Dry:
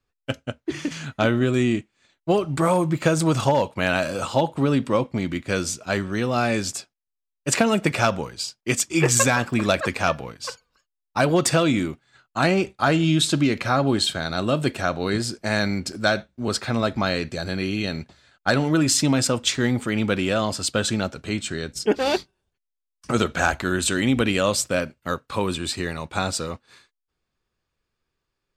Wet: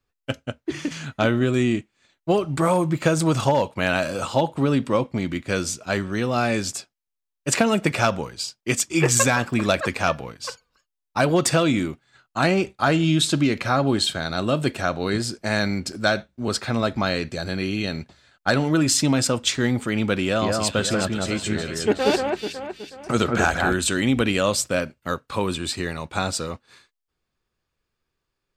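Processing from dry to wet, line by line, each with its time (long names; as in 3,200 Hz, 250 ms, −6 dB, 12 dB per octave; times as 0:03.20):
0:20.23–0:23.74: delay that swaps between a low-pass and a high-pass 185 ms, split 2,200 Hz, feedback 63%, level −2.5 dB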